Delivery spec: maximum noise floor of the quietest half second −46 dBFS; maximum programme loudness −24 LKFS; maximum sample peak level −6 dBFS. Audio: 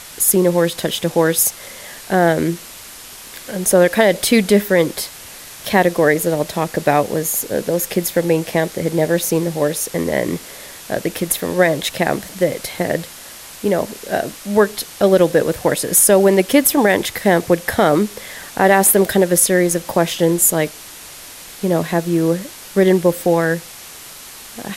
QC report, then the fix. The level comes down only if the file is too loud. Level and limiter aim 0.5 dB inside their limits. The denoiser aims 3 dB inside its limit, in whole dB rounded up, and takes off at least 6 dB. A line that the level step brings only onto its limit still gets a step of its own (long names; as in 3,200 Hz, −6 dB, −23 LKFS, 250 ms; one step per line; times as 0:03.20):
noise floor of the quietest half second −37 dBFS: out of spec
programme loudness −16.5 LKFS: out of spec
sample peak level −1.5 dBFS: out of spec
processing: broadband denoise 6 dB, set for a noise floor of −37 dBFS
level −8 dB